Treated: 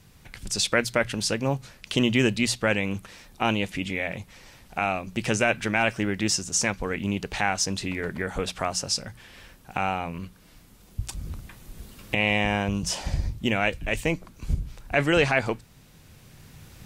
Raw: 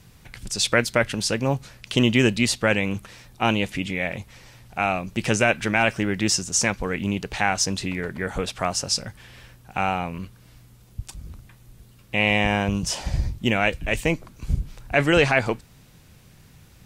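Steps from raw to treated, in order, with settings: recorder AGC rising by 5.9 dB/s; notches 60/120/180 Hz; gain -3 dB

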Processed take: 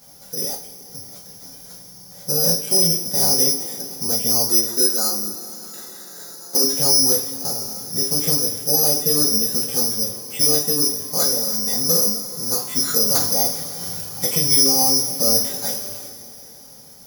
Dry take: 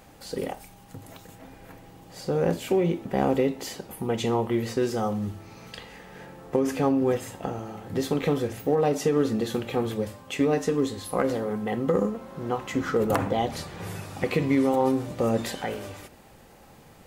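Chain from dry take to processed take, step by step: 4.49–6.64 speaker cabinet 250–6500 Hz, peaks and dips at 310 Hz +8 dB, 1400 Hz +9 dB, 2400 Hz -10 dB; careless resampling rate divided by 8×, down filtered, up zero stuff; two-slope reverb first 0.27 s, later 3.9 s, from -22 dB, DRR -7.5 dB; gain -11 dB

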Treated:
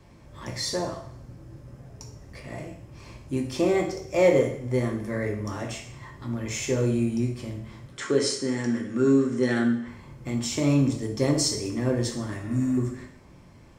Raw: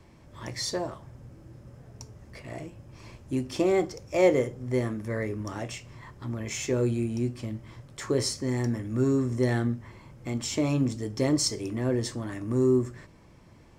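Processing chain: 7.92–9.88 speaker cabinet 200–9400 Hz, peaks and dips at 240 Hz +3 dB, 430 Hz +3 dB, 640 Hz -4 dB, 970 Hz -4 dB, 1500 Hz +8 dB, 3000 Hz +5 dB; 12.45–12.75 spectral repair 340–4200 Hz before; two-slope reverb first 0.59 s, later 1.6 s, from -24 dB, DRR 1 dB

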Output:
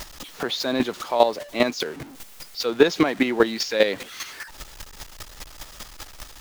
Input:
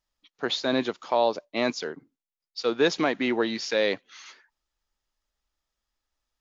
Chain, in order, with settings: zero-crossing step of -36 dBFS; chopper 5 Hz, depth 65%, duty 15%; gain +8.5 dB

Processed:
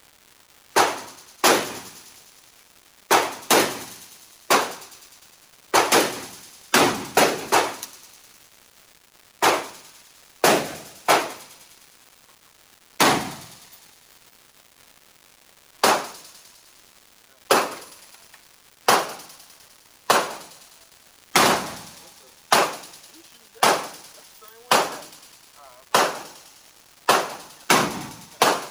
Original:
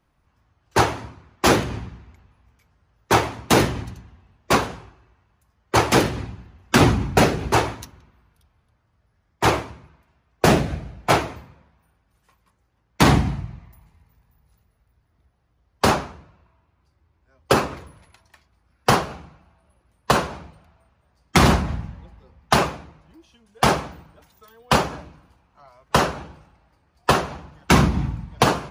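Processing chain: HPF 380 Hz 12 dB/oct; high shelf 6300 Hz +7 dB; in parallel at -2 dB: limiter -9.5 dBFS, peak gain reduction 8.5 dB; on the sum: crackle 450/s -34 dBFS; on a send: thin delay 0.102 s, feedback 76%, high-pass 4500 Hz, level -14.5 dB; on the sum: gain -3 dB

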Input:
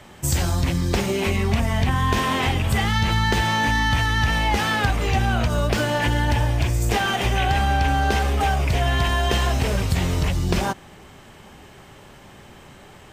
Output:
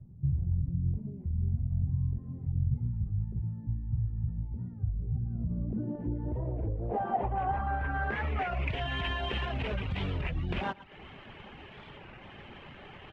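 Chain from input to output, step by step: median filter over 9 samples; limiter -14.5 dBFS, peak gain reduction 5 dB; feedback echo 0.114 s, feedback 27%, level -12.5 dB; compressor 1.5:1, threshold -38 dBFS, peak gain reduction 7.5 dB; low-pass sweep 130 Hz -> 2900 Hz, 5.02–8.75; reverb removal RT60 0.6 s; record warp 33 1/3 rpm, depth 160 cents; gain -2.5 dB

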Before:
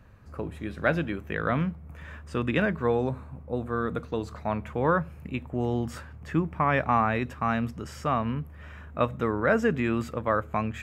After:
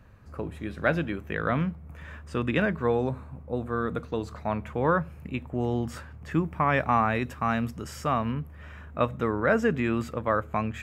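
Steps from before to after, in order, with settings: 6.31–8.32 high shelf 6600 Hz +7.5 dB

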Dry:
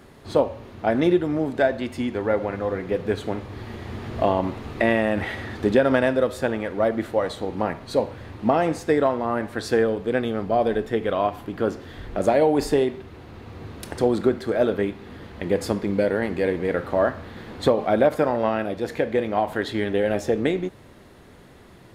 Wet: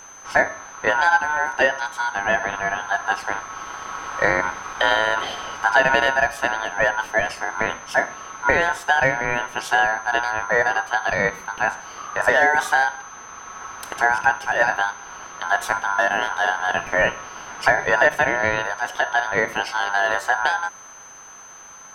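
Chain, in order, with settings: ring modulator 1200 Hz; whine 6200 Hz -46 dBFS; gain +4.5 dB

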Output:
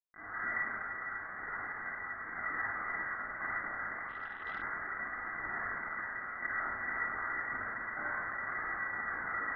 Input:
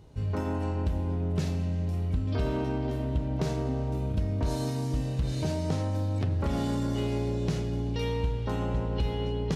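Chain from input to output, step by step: limiter -25.5 dBFS, peak gain reduction 6.5 dB; AGC gain up to 10.5 dB; Schmitt trigger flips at -42 dBFS; phaser 0.29 Hz, delay 2.4 ms, feedback 40%; rippled Chebyshev high-pass 1400 Hz, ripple 9 dB; air absorption 430 m; reverb RT60 1.5 s, pre-delay 52 ms, DRR -1.5 dB; inverted band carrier 3400 Hz; 4.08–4.62 core saturation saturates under 760 Hz

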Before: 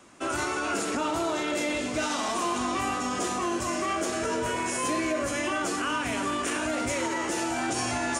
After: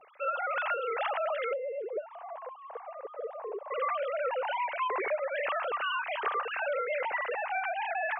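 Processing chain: sine-wave speech; compressor, threshold -28 dBFS, peak gain reduction 8.5 dB; 1.53–3.71 band-pass 480 Hz, Q 2.9

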